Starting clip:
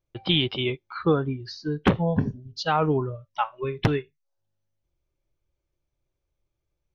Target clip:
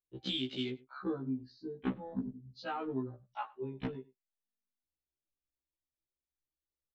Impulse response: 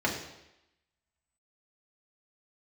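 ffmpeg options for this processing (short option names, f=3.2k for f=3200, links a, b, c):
-filter_complex "[0:a]asettb=1/sr,asplit=3[a][b][c];[a]atrim=end=0.654[d];[b]atrim=start=0.65:end=2.66,asetpts=PTS-STARTPTS,afade=t=in:d=0.004:c=qsin,afade=t=out:st=2.006:d=0.004:c=qsin,highshelf=f=2.8k:g=-5[e];[c]atrim=start=2.656[f];[d][e]acrossfade=d=0.004:c1=hsin:c2=qsin[g];[g][f]acrossfade=d=0.004:c1=qsin:c2=hsin,afwtdn=0.02,equalizer=f=100:t=o:w=0.67:g=-9,equalizer=f=250:t=o:w=0.67:g=11,equalizer=f=4k:t=o:w=0.67:g=10,aecho=1:1:96:0.0631,acompressor=threshold=-38dB:ratio=2,afftfilt=real='re*1.73*eq(mod(b,3),0)':imag='im*1.73*eq(mod(b,3),0)':win_size=2048:overlap=0.75,volume=-3dB"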